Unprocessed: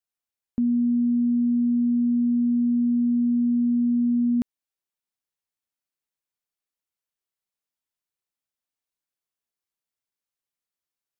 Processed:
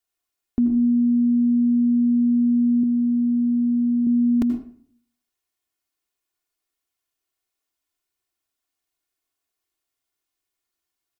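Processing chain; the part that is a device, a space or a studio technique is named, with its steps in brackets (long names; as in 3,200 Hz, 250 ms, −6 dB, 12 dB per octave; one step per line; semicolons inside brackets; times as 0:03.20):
microphone above a desk (comb filter 2.8 ms; convolution reverb RT60 0.50 s, pre-delay 77 ms, DRR 6.5 dB)
0:02.83–0:04.07: comb filter 2.7 ms
level +5 dB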